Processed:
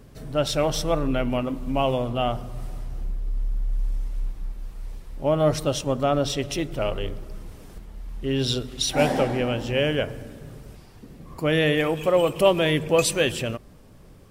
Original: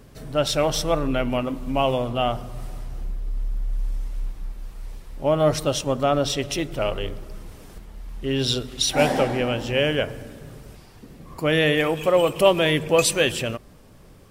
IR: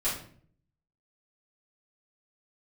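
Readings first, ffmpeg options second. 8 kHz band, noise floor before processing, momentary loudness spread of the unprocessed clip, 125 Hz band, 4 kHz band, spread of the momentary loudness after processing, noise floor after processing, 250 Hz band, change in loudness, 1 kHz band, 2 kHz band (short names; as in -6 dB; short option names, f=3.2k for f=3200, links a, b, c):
-3.0 dB, -48 dBFS, 19 LU, 0.0 dB, -3.0 dB, 19 LU, -48 dBFS, -0.5 dB, -1.5 dB, -2.0 dB, -3.0 dB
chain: -af "lowshelf=f=490:g=3.5,volume=-3dB"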